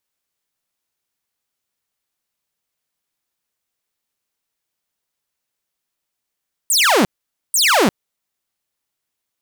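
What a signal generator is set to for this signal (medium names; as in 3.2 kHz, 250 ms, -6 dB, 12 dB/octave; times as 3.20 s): burst of laser zaps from 9.6 kHz, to 170 Hz, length 0.35 s saw, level -8.5 dB, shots 2, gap 0.49 s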